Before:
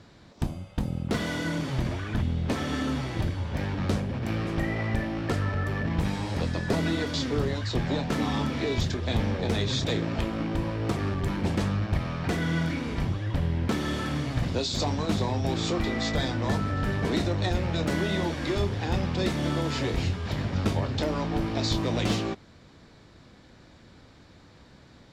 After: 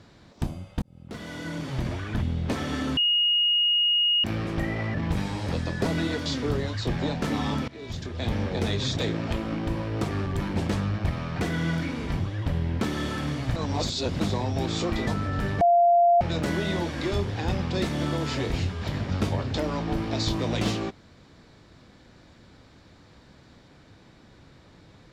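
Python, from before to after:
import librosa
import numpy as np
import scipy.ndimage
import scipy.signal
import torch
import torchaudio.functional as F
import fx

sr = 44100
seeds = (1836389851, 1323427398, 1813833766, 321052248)

y = fx.edit(x, sr, fx.fade_in_span(start_s=0.82, length_s=1.11),
    fx.bleep(start_s=2.97, length_s=1.27, hz=2870.0, db=-19.0),
    fx.cut(start_s=4.94, length_s=0.88),
    fx.fade_in_from(start_s=8.56, length_s=0.75, floor_db=-20.5),
    fx.reverse_span(start_s=14.44, length_s=0.64),
    fx.cut(start_s=15.95, length_s=0.56),
    fx.bleep(start_s=17.05, length_s=0.6, hz=693.0, db=-15.0), tone=tone)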